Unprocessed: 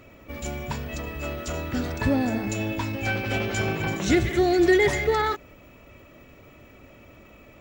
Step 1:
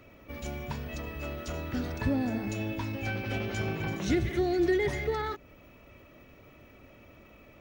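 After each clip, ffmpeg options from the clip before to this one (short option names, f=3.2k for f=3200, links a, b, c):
-filter_complex "[0:a]bandreject=f=7.4k:w=5.2,acrossover=split=350[a][b];[b]acompressor=threshold=-36dB:ratio=1.5[c];[a][c]amix=inputs=2:normalize=0,volume=-4.5dB"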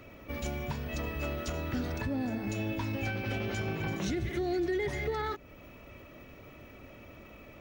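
-af "alimiter=level_in=3.5dB:limit=-24dB:level=0:latency=1:release=367,volume=-3.5dB,volume=3.5dB"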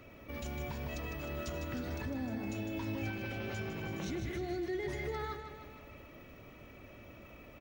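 -af "alimiter=level_in=4dB:limit=-24dB:level=0:latency=1:release=62,volume=-4dB,aecho=1:1:154|308|462|616|770|924|1078:0.398|0.227|0.129|0.0737|0.042|0.024|0.0137,volume=-3.5dB"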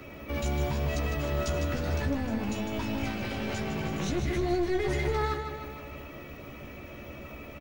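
-filter_complex "[0:a]acrossover=split=140|4800[a][b][c];[b]aeval=exprs='clip(val(0),-1,0.00708)':c=same[d];[a][d][c]amix=inputs=3:normalize=0,asplit=2[e][f];[f]adelay=14,volume=-4.5dB[g];[e][g]amix=inputs=2:normalize=0,volume=8.5dB"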